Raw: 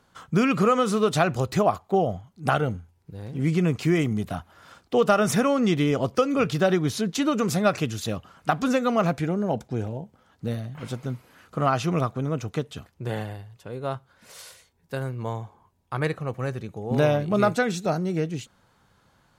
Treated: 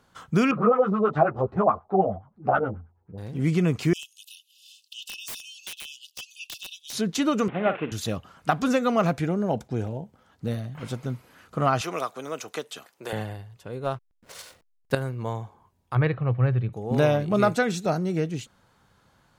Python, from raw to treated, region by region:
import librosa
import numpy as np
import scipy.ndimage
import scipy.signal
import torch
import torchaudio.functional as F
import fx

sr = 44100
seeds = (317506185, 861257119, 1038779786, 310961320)

y = fx.chain(x, sr, fx.filter_lfo_lowpass(shape='sine', hz=9.4, low_hz=550.0, high_hz=1600.0, q=2.6),
    fx.ensemble(), at=(0.51, 3.18))
y = fx.chain(y, sr, fx.cheby1_highpass(hz=2600.0, order=10),
    fx.overflow_wrap(gain_db=28.5),
    fx.band_squash(depth_pct=40), at=(3.93, 6.93))
y = fx.chain(y, sr, fx.cvsd(bps=16000),
    fx.highpass(hz=240.0, slope=12),
    fx.doubler(ms=46.0, db=-12.5), at=(7.48, 7.92))
y = fx.chain(y, sr, fx.highpass(hz=480.0, slope=12),
    fx.high_shelf(hz=4500.0, db=7.0),
    fx.band_squash(depth_pct=40), at=(11.81, 13.13))
y = fx.chain(y, sr, fx.transient(attack_db=10, sustain_db=-1),
    fx.backlash(play_db=-43.0), at=(13.84, 14.95))
y = fx.chain(y, sr, fx.lowpass(hz=3400.0, slope=24),
    fx.peak_eq(hz=120.0, db=13.5, octaves=0.42), at=(15.95, 16.73))